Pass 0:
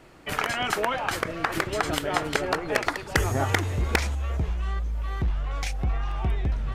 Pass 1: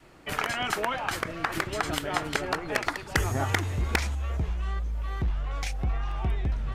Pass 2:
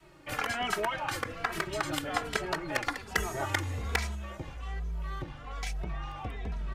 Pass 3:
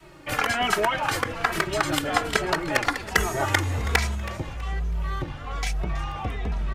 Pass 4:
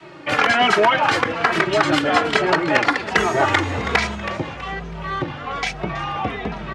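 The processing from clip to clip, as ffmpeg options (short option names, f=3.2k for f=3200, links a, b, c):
-af "adynamicequalizer=threshold=0.00794:dfrequency=490:dqfactor=1.7:tfrequency=490:tqfactor=1.7:attack=5:release=100:ratio=0.375:range=2:mode=cutabove:tftype=bell,volume=-2dB"
-filter_complex "[0:a]acrossover=split=350[a][b];[a]asoftclip=type=hard:threshold=-32dB[c];[c][b]amix=inputs=2:normalize=0,asplit=2[d][e];[e]adelay=2.7,afreqshift=-1.2[f];[d][f]amix=inputs=2:normalize=1"
-filter_complex "[0:a]asplit=4[a][b][c][d];[b]adelay=324,afreqshift=35,volume=-17dB[e];[c]adelay=648,afreqshift=70,volume=-27.5dB[f];[d]adelay=972,afreqshift=105,volume=-37.9dB[g];[a][e][f][g]amix=inputs=4:normalize=0,volume=8dB"
-af "asoftclip=type=hard:threshold=-17.5dB,highpass=160,lowpass=4.3k,volume=9dB"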